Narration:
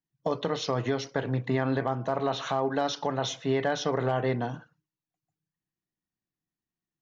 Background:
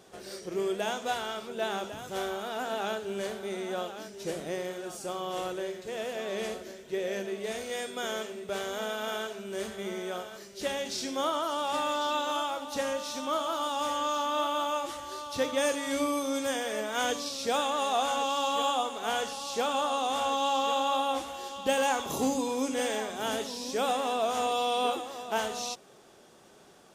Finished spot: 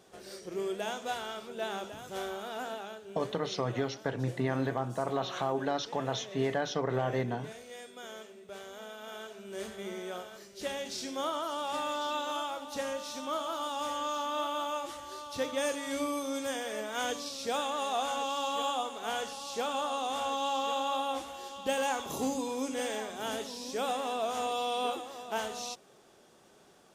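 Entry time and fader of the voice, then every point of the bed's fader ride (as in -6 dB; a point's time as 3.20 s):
2.90 s, -4.0 dB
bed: 2.67 s -4 dB
2.88 s -11.5 dB
9.01 s -11.5 dB
9.64 s -4 dB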